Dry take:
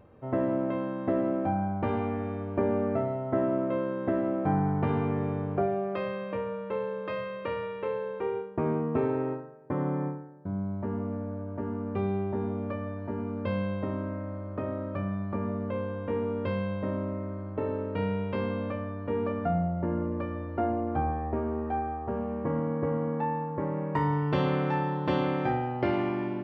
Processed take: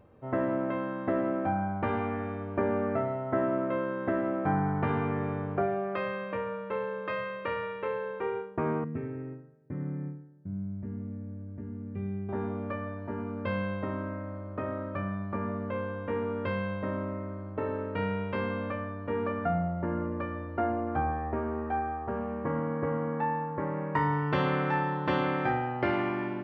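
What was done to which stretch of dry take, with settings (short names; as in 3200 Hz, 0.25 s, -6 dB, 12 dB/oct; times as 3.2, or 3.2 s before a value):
8.84–12.29 EQ curve 180 Hz 0 dB, 1000 Hz -21 dB, 2000 Hz -6 dB, 4500 Hz -20 dB
whole clip: dynamic EQ 1600 Hz, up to +8 dB, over -49 dBFS, Q 0.93; gain -2.5 dB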